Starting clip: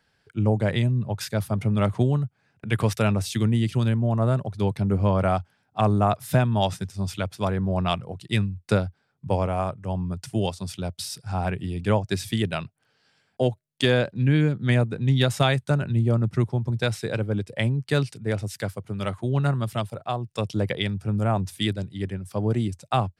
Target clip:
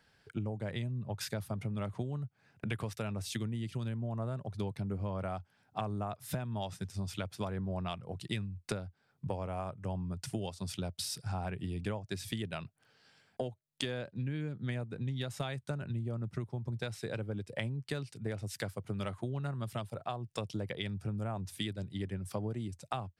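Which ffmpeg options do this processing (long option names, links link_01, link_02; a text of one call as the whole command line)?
ffmpeg -i in.wav -af "acompressor=threshold=-34dB:ratio=10" out.wav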